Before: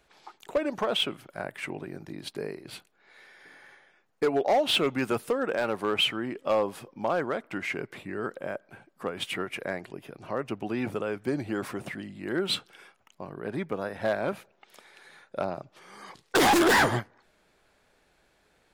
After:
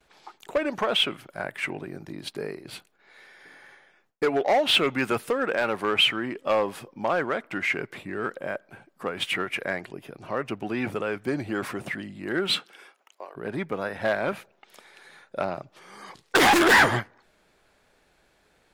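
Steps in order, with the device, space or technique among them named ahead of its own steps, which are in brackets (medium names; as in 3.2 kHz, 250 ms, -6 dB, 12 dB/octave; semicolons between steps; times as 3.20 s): parallel distortion (in parallel at -11 dB: hard clipper -33.5 dBFS, distortion -3 dB); on the sum: gate with hold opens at -55 dBFS; 12.53–13.35 s: high-pass 150 Hz -> 520 Hz 24 dB/octave; dynamic bell 2 kHz, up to +6 dB, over -41 dBFS, Q 0.74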